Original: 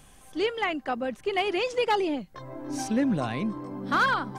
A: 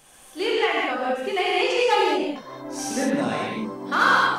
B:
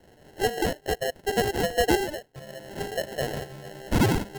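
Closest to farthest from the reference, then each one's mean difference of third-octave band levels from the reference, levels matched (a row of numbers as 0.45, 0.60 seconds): A, B; 7.0, 10.5 decibels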